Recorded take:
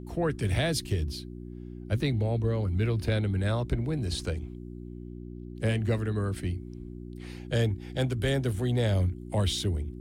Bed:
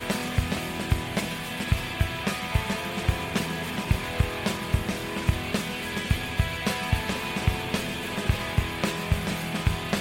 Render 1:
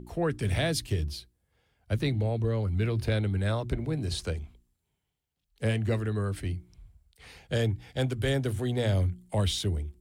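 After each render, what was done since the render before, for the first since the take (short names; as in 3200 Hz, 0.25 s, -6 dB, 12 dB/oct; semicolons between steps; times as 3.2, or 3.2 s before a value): de-hum 60 Hz, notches 6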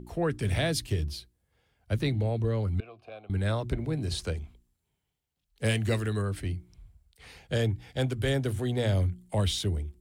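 2.8–3.3 vowel filter a; 5.64–6.22 high shelf 2500 Hz +10.5 dB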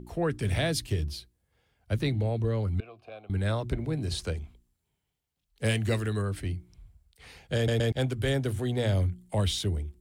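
7.56 stutter in place 0.12 s, 3 plays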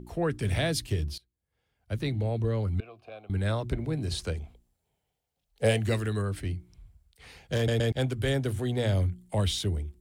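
1.18–2.38 fade in, from -20.5 dB; 4.4–5.8 band shelf 610 Hz +8.5 dB 1.1 oct; 6.39–7.62 self-modulated delay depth 0.089 ms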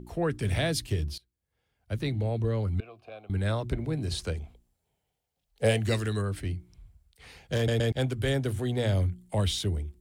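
5.77–6.21 dynamic EQ 5400 Hz, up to +7 dB, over -54 dBFS, Q 1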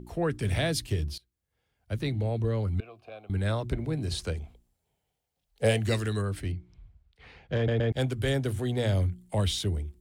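6.51–7.92 LPF 4500 Hz -> 2200 Hz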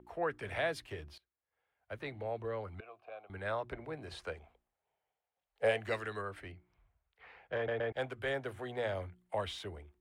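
three-band isolator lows -20 dB, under 500 Hz, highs -19 dB, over 2400 Hz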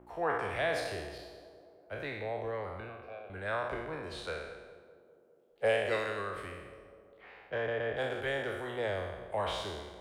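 spectral trails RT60 1.11 s; tape echo 0.202 s, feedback 80%, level -13.5 dB, low-pass 1100 Hz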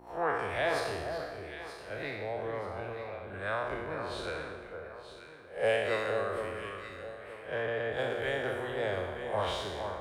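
spectral swells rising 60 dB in 0.34 s; on a send: echo with dull and thin repeats by turns 0.465 s, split 1400 Hz, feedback 53%, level -5 dB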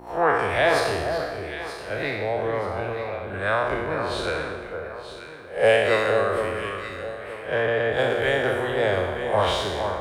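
gain +10.5 dB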